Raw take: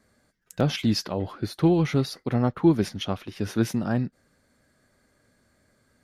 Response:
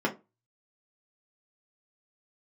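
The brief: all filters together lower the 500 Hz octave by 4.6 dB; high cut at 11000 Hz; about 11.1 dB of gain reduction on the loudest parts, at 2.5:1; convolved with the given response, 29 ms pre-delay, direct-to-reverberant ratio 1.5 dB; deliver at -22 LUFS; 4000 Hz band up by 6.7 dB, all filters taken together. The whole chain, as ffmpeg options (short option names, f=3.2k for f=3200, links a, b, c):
-filter_complex "[0:a]lowpass=11k,equalizer=f=500:t=o:g=-7.5,equalizer=f=4k:t=o:g=9,acompressor=threshold=-34dB:ratio=2.5,asplit=2[a][b];[1:a]atrim=start_sample=2205,adelay=29[c];[b][c]afir=irnorm=-1:irlink=0,volume=-12dB[d];[a][d]amix=inputs=2:normalize=0,volume=9.5dB"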